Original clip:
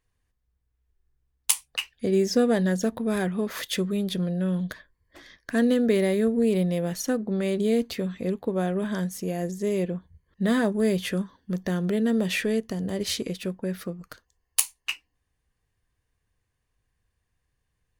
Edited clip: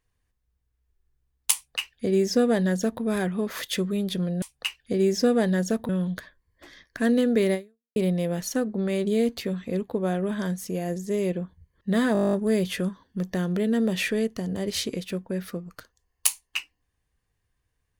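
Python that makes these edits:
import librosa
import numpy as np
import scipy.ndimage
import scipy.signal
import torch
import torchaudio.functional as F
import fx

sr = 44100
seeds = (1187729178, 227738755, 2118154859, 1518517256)

y = fx.edit(x, sr, fx.duplicate(start_s=1.55, length_s=1.47, to_s=4.42),
    fx.fade_out_span(start_s=6.07, length_s=0.42, curve='exp'),
    fx.stutter(start_s=10.66, slice_s=0.02, count=11), tone=tone)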